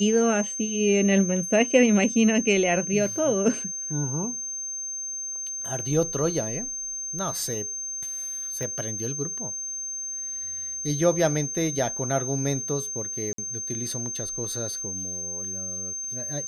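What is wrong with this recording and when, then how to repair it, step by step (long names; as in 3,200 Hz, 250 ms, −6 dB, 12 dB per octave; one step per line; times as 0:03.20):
whistle 6,300 Hz −30 dBFS
0:08.63: click
0:13.33–0:13.38: drop-out 53 ms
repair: click removal
notch filter 6,300 Hz, Q 30
repair the gap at 0:13.33, 53 ms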